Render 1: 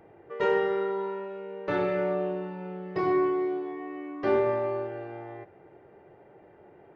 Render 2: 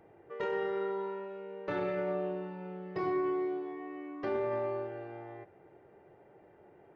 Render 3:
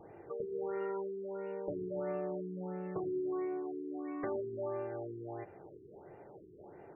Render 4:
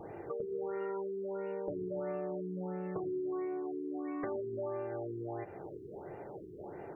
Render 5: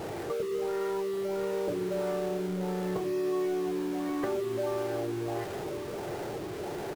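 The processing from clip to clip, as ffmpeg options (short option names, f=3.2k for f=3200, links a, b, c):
-af "alimiter=limit=-20.5dB:level=0:latency=1:release=35,volume=-5dB"
-af "acompressor=threshold=-44dB:ratio=2.5,acrusher=samples=4:mix=1:aa=0.000001,afftfilt=real='re*lt(b*sr/1024,430*pow(2900/430,0.5+0.5*sin(2*PI*1.5*pts/sr)))':imag='im*lt(b*sr/1024,430*pow(2900/430,0.5+0.5*sin(2*PI*1.5*pts/sr)))':win_size=1024:overlap=0.75,volume=5.5dB"
-af "acompressor=threshold=-46dB:ratio=2.5,volume=7.5dB"
-filter_complex "[0:a]aeval=exprs='val(0)+0.5*0.00944*sgn(val(0))':c=same,asplit=2[a][b];[b]acrusher=bits=3:mode=log:mix=0:aa=0.000001,volume=-5dB[c];[a][c]amix=inputs=2:normalize=0,aecho=1:1:1131:0.266"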